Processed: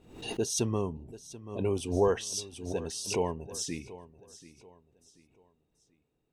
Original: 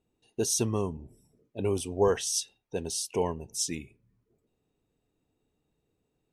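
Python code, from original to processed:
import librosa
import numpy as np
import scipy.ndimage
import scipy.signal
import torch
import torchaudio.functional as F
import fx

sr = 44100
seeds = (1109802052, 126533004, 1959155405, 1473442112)

y = fx.high_shelf(x, sr, hz=7600.0, db=-11.0)
y = fx.echo_feedback(y, sr, ms=735, feedback_pct=35, wet_db=-17.0)
y = fx.pre_swell(y, sr, db_per_s=89.0)
y = y * 10.0 ** (-1.5 / 20.0)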